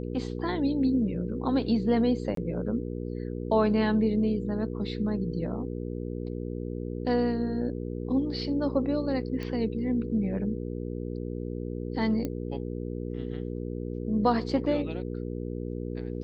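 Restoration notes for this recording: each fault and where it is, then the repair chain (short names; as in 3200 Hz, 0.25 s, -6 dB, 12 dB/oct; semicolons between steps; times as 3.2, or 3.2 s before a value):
hum 60 Hz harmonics 8 -34 dBFS
2.35–2.37 gap 23 ms
9.43 pop -23 dBFS
12.25 pop -19 dBFS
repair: de-click; de-hum 60 Hz, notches 8; interpolate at 2.35, 23 ms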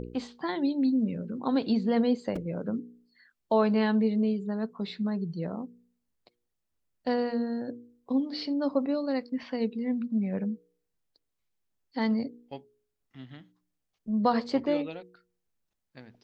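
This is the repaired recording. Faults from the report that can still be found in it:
none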